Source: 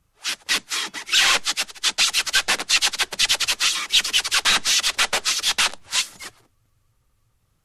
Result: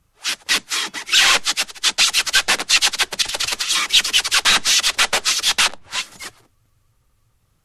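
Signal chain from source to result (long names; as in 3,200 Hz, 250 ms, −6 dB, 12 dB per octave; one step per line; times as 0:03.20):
0:03.22–0:03.92: compressor whose output falls as the input rises −23 dBFS, ratio −0.5
0:05.68–0:06.12: high-shelf EQ 3,300 Hz −11 dB
level +3.5 dB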